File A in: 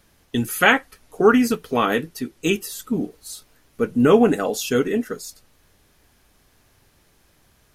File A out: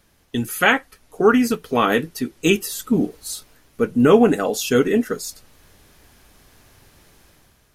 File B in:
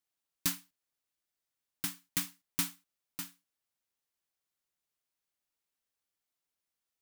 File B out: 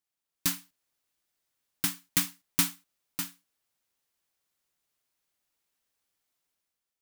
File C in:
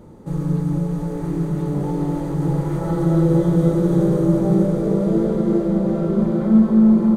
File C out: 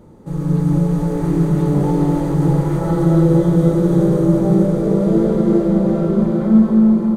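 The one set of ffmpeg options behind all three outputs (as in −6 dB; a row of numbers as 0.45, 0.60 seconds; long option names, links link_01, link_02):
-af "dynaudnorm=framelen=110:gausssize=9:maxgain=8dB,volume=-1dB"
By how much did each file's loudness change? +1.0, +6.0, +3.5 LU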